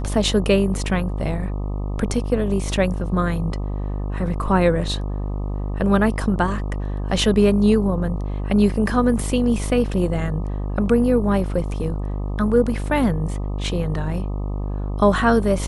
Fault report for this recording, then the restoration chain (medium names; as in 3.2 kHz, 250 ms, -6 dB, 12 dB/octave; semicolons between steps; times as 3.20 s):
buzz 50 Hz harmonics 25 -25 dBFS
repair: de-hum 50 Hz, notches 25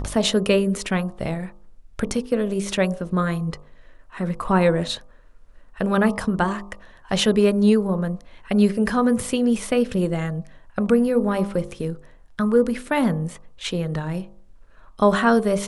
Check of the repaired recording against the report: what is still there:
nothing left